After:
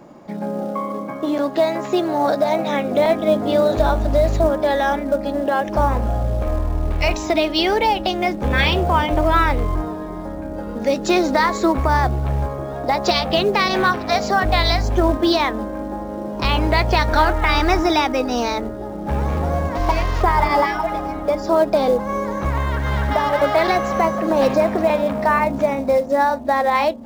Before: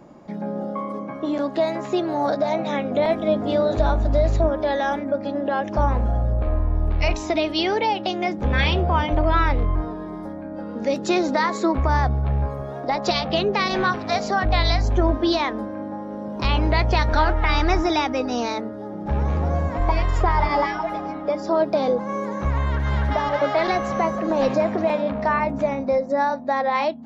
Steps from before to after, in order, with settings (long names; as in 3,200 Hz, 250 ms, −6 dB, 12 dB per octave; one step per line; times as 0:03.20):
0:19.75–0:20.23: variable-slope delta modulation 32 kbit/s
low-shelf EQ 170 Hz −5 dB
in parallel at −8 dB: floating-point word with a short mantissa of 2 bits
on the sum: delay with a low-pass on its return 947 ms, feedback 72%, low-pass 400 Hz, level −18 dB
level +1.5 dB